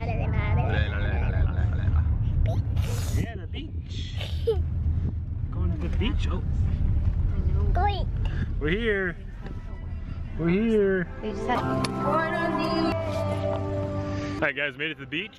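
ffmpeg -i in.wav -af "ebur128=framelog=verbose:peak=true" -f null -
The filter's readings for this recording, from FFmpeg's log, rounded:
Integrated loudness:
  I:         -27.1 LUFS
  Threshold: -37.2 LUFS
Loudness range:
  LRA:         3.1 LU
  Threshold: -47.3 LUFS
  LRA low:   -29.0 LUFS
  LRA high:  -25.9 LUFS
True peak:
  Peak:      -10.3 dBFS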